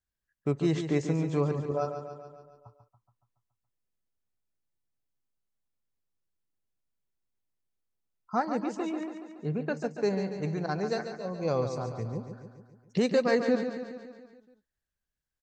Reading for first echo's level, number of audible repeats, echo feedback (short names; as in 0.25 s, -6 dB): -8.5 dB, 6, 59%